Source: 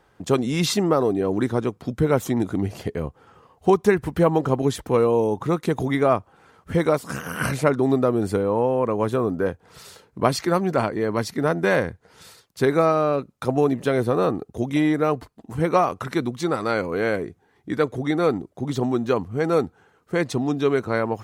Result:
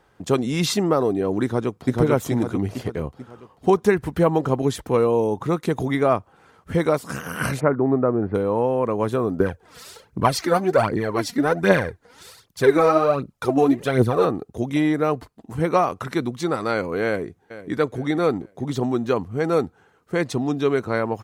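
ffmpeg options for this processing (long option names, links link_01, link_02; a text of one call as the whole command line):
ffmpeg -i in.wav -filter_complex "[0:a]asplit=2[link_01][link_02];[link_02]afade=type=in:start_time=1.43:duration=0.01,afade=type=out:start_time=1.98:duration=0.01,aecho=0:1:440|880|1320|1760|2200|2640:1|0.45|0.2025|0.091125|0.0410062|0.0184528[link_03];[link_01][link_03]amix=inputs=2:normalize=0,asplit=3[link_04][link_05][link_06];[link_04]afade=type=out:start_time=7.59:duration=0.02[link_07];[link_05]lowpass=frequency=1800:width=0.5412,lowpass=frequency=1800:width=1.3066,afade=type=in:start_time=7.59:duration=0.02,afade=type=out:start_time=8.34:duration=0.02[link_08];[link_06]afade=type=in:start_time=8.34:duration=0.02[link_09];[link_07][link_08][link_09]amix=inputs=3:normalize=0,asettb=1/sr,asplit=3[link_10][link_11][link_12];[link_10]atrim=end=9.404[link_13];[link_11]atrim=start=9.4:end=14.25,asetpts=PTS-STARTPTS,afade=type=in:duration=0.004:curve=qsin,afade=type=out:start_time=4.846:duration=0.004:curve=qsin,aphaser=in_gain=1:out_gain=1:delay=4.3:decay=0.65:speed=1.3:type=triangular[link_14];[link_12]atrim=start=14.246[link_15];[link_13][link_14]acrossfade=duration=0.004:curve1=hsin:curve2=qsin[link_16];[link_16][link_15]acrossfade=duration=0.004:curve1=qsin:curve2=hsin,asplit=2[link_17][link_18];[link_18]afade=type=in:start_time=17.05:duration=0.01,afade=type=out:start_time=17.74:duration=0.01,aecho=0:1:450|900|1350:0.188365|0.0659277|0.0230747[link_19];[link_17][link_19]amix=inputs=2:normalize=0" out.wav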